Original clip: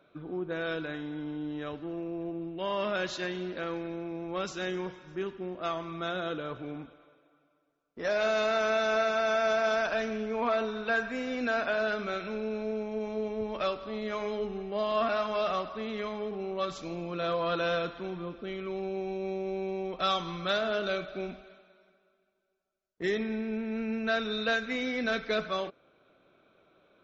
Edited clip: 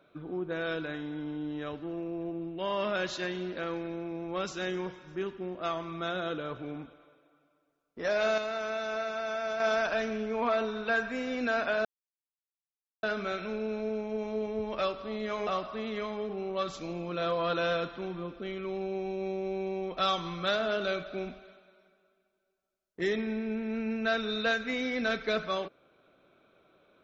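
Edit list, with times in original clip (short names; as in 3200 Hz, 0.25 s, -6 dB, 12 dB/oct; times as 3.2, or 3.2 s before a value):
8.38–9.6 gain -6.5 dB
11.85 insert silence 1.18 s
14.29–15.49 cut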